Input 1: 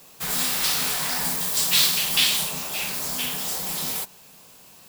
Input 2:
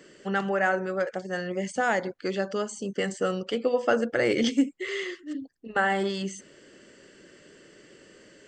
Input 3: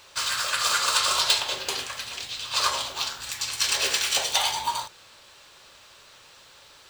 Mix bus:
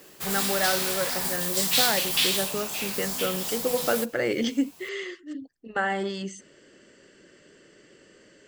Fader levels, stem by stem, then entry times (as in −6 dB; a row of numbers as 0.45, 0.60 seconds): −3.5 dB, −2.0 dB, muted; 0.00 s, 0.00 s, muted